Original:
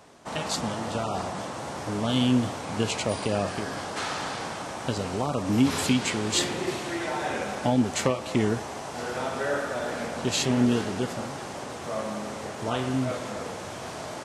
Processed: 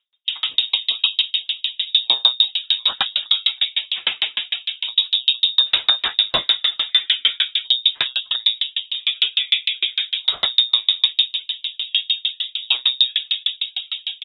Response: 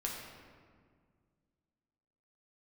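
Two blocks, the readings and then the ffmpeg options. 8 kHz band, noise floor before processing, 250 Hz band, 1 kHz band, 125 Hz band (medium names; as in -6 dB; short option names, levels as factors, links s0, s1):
under -25 dB, -37 dBFS, under -25 dB, -5.5 dB, under -20 dB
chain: -filter_complex "[0:a]bandreject=f=580:w=12,afftdn=nr=31:nf=-38,tiltshelf=f=710:g=3.5,flanger=delay=2.6:depth=5.4:regen=-83:speed=0.98:shape=sinusoidal,asplit=2[s0][s1];[s1]adelay=594,lowpass=f=850:p=1,volume=0.126,asplit=2[s2][s3];[s3]adelay=594,lowpass=f=850:p=1,volume=0.42,asplit=2[s4][s5];[s5]adelay=594,lowpass=f=850:p=1,volume=0.42[s6];[s2][s4][s6]amix=inputs=3:normalize=0[s7];[s0][s7]amix=inputs=2:normalize=0,lowpass=f=3300:t=q:w=0.5098,lowpass=f=3300:t=q:w=0.6013,lowpass=f=3300:t=q:w=0.9,lowpass=f=3300:t=q:w=2.563,afreqshift=-3900,alimiter=level_in=15:limit=0.891:release=50:level=0:latency=1,aeval=exprs='val(0)*pow(10,-39*if(lt(mod(6.6*n/s,1),2*abs(6.6)/1000),1-mod(6.6*n/s,1)/(2*abs(6.6)/1000),(mod(6.6*n/s,1)-2*abs(6.6)/1000)/(1-2*abs(6.6)/1000))/20)':c=same"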